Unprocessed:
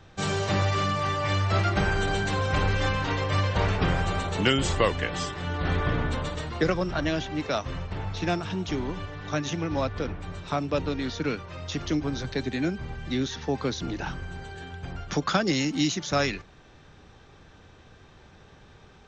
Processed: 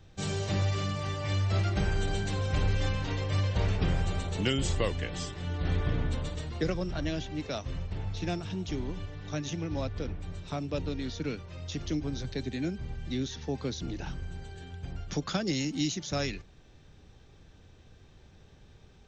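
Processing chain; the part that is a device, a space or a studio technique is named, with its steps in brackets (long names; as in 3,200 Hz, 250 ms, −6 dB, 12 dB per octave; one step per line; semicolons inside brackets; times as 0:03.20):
smiley-face EQ (low-shelf EQ 100 Hz +7 dB; parametric band 1,200 Hz −7 dB 1.5 octaves; high-shelf EQ 7,200 Hz +4.5 dB)
level −5.5 dB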